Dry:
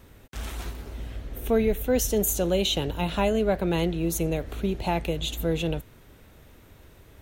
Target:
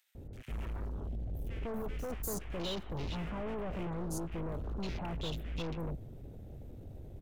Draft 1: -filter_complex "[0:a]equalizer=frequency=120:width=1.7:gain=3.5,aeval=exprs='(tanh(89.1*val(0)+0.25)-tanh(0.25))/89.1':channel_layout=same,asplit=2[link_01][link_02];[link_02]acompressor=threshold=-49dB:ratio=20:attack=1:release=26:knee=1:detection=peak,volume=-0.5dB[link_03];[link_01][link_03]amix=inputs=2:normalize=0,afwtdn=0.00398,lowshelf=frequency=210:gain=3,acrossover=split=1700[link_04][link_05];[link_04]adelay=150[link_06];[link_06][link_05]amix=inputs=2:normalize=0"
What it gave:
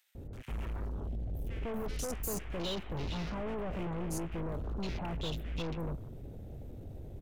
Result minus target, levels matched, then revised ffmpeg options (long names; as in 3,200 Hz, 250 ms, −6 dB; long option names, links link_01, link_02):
downward compressor: peak gain reduction −7 dB
-filter_complex "[0:a]equalizer=frequency=120:width=1.7:gain=3.5,aeval=exprs='(tanh(89.1*val(0)+0.25)-tanh(0.25))/89.1':channel_layout=same,asplit=2[link_01][link_02];[link_02]acompressor=threshold=-56.5dB:ratio=20:attack=1:release=26:knee=1:detection=peak,volume=-0.5dB[link_03];[link_01][link_03]amix=inputs=2:normalize=0,afwtdn=0.00398,lowshelf=frequency=210:gain=3,acrossover=split=1700[link_04][link_05];[link_04]adelay=150[link_06];[link_06][link_05]amix=inputs=2:normalize=0"